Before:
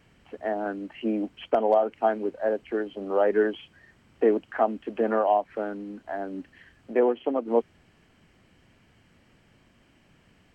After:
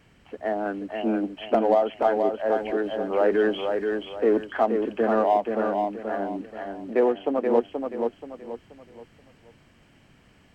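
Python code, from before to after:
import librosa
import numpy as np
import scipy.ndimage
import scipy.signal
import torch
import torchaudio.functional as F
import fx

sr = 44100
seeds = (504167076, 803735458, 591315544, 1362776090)

p1 = fx.transient(x, sr, attack_db=-3, sustain_db=5, at=(2.39, 4.44), fade=0.02)
p2 = np.clip(p1, -10.0 ** (-25.5 / 20.0), 10.0 ** (-25.5 / 20.0))
p3 = p1 + (p2 * 10.0 ** (-11.0 / 20.0))
y = fx.echo_feedback(p3, sr, ms=479, feedback_pct=34, wet_db=-5)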